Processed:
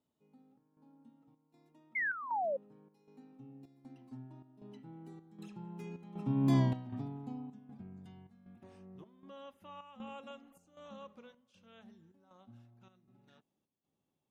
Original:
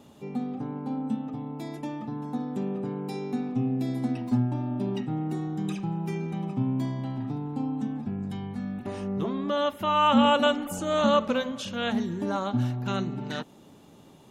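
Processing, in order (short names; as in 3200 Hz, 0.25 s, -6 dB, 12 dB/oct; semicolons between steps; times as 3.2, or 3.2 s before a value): Doppler pass-by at 6.6, 16 m/s, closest 1.5 m; painted sound fall, 1.95–2.57, 520–2200 Hz -38 dBFS; chopper 1.3 Hz, depth 65%, duty 75%; gain +4.5 dB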